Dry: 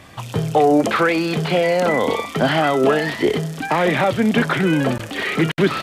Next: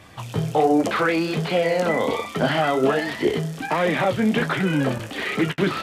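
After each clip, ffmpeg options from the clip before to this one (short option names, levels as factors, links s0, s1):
-af "flanger=delay=9.3:depth=9.2:regen=-31:speed=1.3:shape=sinusoidal"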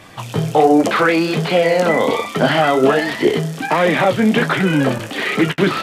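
-af "equalizer=f=68:t=o:w=0.93:g=-11.5,volume=2.11"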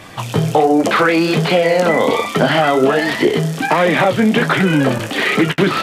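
-af "acompressor=threshold=0.178:ratio=3,volume=1.68"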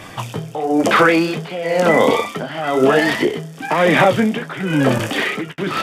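-af "bandreject=f=4100:w=10,tremolo=f=1:d=0.84,volume=1.19"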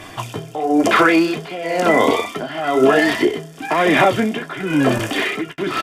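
-af "aecho=1:1:2.9:0.43,volume=0.891" -ar 44100 -c:a libmp3lame -b:a 320k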